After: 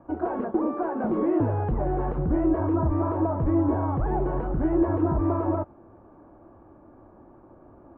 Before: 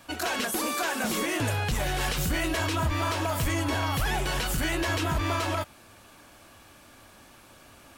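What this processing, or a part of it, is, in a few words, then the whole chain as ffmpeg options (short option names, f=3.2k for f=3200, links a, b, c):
under water: -filter_complex "[0:a]lowpass=f=1k:w=0.5412,lowpass=f=1k:w=1.3066,equalizer=f=340:t=o:w=0.48:g=8.5,asettb=1/sr,asplit=3[a][b][c];[a]atrim=end=1.004[d];[b]atrim=start=1:end=1.74,asetpts=PTS-STARTPTS,afade=t=in:d=0.004:c=qsin,afade=t=out:st=0.736:d=0.004:c=qsin,highshelf=f=3.3k:g=9.5[e];[c]atrim=start=1.736[f];[d][e]acrossfade=d=0.004:c1=hsin:c2=qsin[g];[g][f]acrossfade=d=0.004:c1=qsin:c2=hsin,volume=2.5dB"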